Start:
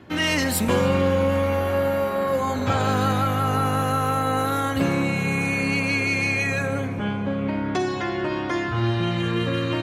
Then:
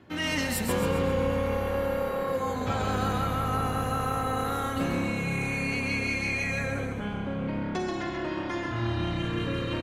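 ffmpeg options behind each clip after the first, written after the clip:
-filter_complex "[0:a]asplit=6[a][b][c][d][e][f];[b]adelay=133,afreqshift=-35,volume=-5dB[g];[c]adelay=266,afreqshift=-70,volume=-12.1dB[h];[d]adelay=399,afreqshift=-105,volume=-19.3dB[i];[e]adelay=532,afreqshift=-140,volume=-26.4dB[j];[f]adelay=665,afreqshift=-175,volume=-33.5dB[k];[a][g][h][i][j][k]amix=inputs=6:normalize=0,volume=-7.5dB"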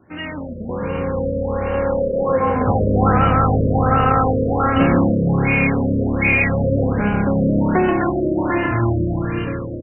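-af "dynaudnorm=f=780:g=5:m=14.5dB,afftfilt=real='re*lt(b*sr/1024,630*pow(3100/630,0.5+0.5*sin(2*PI*1.3*pts/sr)))':imag='im*lt(b*sr/1024,630*pow(3100/630,0.5+0.5*sin(2*PI*1.3*pts/sr)))':win_size=1024:overlap=0.75,volume=1.5dB"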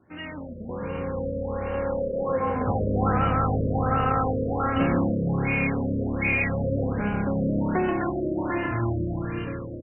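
-af "volume=-7.5dB" -ar 44100 -c:a libmp3lame -b:a 56k

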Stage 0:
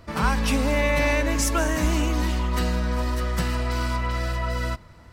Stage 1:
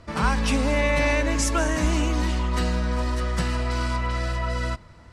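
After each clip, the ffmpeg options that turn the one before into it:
-af "lowpass=f=10k:w=0.5412,lowpass=f=10k:w=1.3066"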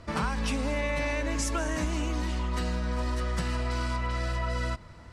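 -af "acompressor=threshold=-26dB:ratio=6"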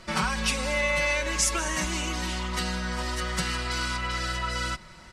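-af "tiltshelf=f=1.3k:g=-5.5,aresample=32000,aresample=44100,aecho=1:1:5.4:0.8,volume=2.5dB"

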